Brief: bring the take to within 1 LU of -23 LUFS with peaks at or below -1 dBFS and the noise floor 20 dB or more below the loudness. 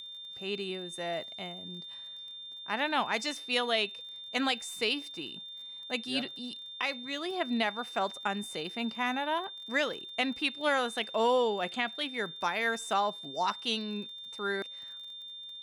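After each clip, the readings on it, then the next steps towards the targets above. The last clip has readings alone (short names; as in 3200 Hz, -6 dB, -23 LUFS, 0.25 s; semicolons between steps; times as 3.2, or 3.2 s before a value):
ticks 36/s; steady tone 3600 Hz; tone level -42 dBFS; loudness -32.5 LUFS; peak -17.0 dBFS; loudness target -23.0 LUFS
-> de-click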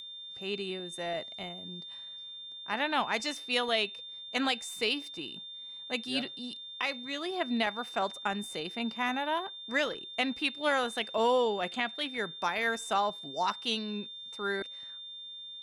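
ticks 0.13/s; steady tone 3600 Hz; tone level -42 dBFS
-> notch 3600 Hz, Q 30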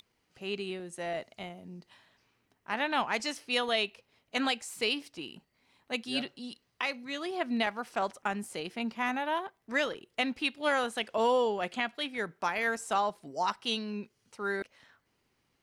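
steady tone none; loudness -32.5 LUFS; peak -17.5 dBFS; loudness target -23.0 LUFS
-> gain +9.5 dB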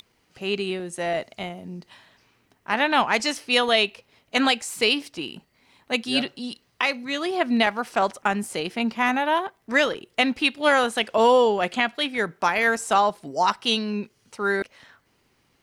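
loudness -23.0 LUFS; peak -8.0 dBFS; noise floor -67 dBFS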